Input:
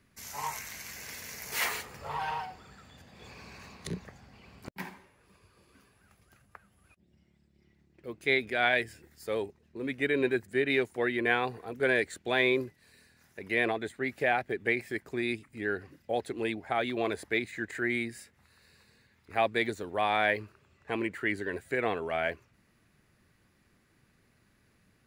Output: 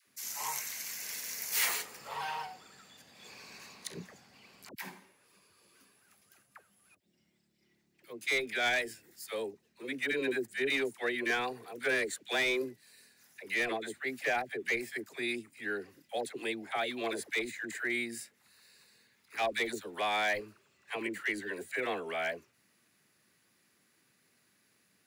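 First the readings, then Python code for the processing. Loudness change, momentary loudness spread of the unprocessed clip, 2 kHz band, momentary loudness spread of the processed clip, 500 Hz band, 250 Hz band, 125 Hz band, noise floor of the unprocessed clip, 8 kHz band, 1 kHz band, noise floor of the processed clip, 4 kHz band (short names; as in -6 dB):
-3.0 dB, 16 LU, -2.5 dB, 16 LU, -5.0 dB, -6.0 dB, -12.0 dB, -68 dBFS, +5.0 dB, -4.5 dB, -72 dBFS, +0.5 dB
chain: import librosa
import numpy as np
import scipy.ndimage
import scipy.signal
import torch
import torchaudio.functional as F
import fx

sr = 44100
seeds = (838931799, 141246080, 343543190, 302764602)

y = scipy.signal.sosfilt(scipy.signal.butter(2, 190.0, 'highpass', fs=sr, output='sos'), x)
y = fx.high_shelf(y, sr, hz=3000.0, db=11.5)
y = np.clip(y, -10.0 ** (-18.0 / 20.0), 10.0 ** (-18.0 / 20.0))
y = fx.dispersion(y, sr, late='lows', ms=69.0, hz=620.0)
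y = y * 10.0 ** (-5.0 / 20.0)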